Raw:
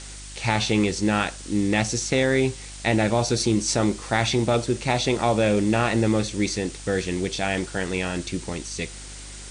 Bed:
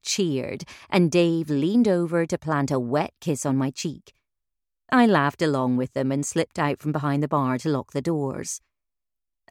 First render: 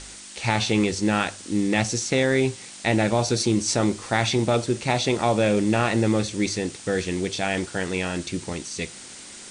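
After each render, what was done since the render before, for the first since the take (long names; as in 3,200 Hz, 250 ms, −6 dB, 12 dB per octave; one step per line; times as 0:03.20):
hum removal 50 Hz, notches 3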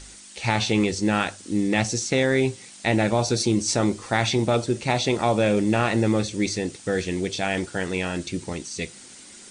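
broadband denoise 6 dB, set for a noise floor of −42 dBFS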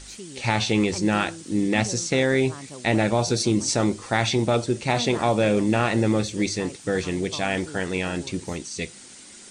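mix in bed −17 dB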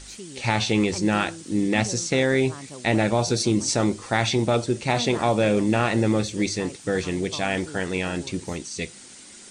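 no processing that can be heard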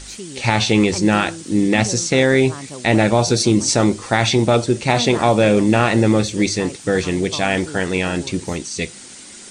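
level +6.5 dB
brickwall limiter −3 dBFS, peak gain reduction 2.5 dB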